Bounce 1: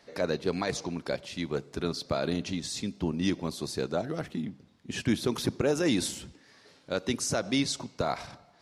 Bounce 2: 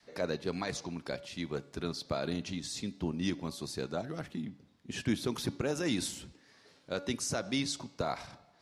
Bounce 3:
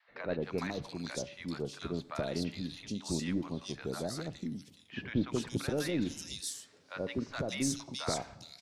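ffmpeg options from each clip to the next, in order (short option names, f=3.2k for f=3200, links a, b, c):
-af "bandreject=f=284.4:t=h:w=4,bandreject=f=568.8:t=h:w=4,bandreject=f=853.2:t=h:w=4,bandreject=f=1.1376k:t=h:w=4,bandreject=f=1.422k:t=h:w=4,bandreject=f=1.7064k:t=h:w=4,bandreject=f=1.9908k:t=h:w=4,bandreject=f=2.2752k:t=h:w=4,bandreject=f=2.5596k:t=h:w=4,bandreject=f=2.844k:t=h:w=4,bandreject=f=3.1284k:t=h:w=4,bandreject=f=3.4128k:t=h:w=4,bandreject=f=3.6972k:t=h:w=4,bandreject=f=3.9816k:t=h:w=4,bandreject=f=4.266k:t=h:w=4,bandreject=f=4.5504k:t=h:w=4,bandreject=f=4.8348k:t=h:w=4,adynamicequalizer=threshold=0.00794:dfrequency=460:dqfactor=1.2:tfrequency=460:tqfactor=1.2:attack=5:release=100:ratio=0.375:range=2.5:mode=cutabove:tftype=bell,volume=-4dB"
-filter_complex "[0:a]aeval=exprs='0.106*(cos(1*acos(clip(val(0)/0.106,-1,1)))-cos(1*PI/2))+0.0133*(cos(2*acos(clip(val(0)/0.106,-1,1)))-cos(2*PI/2))':c=same,acrossover=split=830|3200[a][b][c];[a]adelay=80[d];[c]adelay=420[e];[d][b][e]amix=inputs=3:normalize=0"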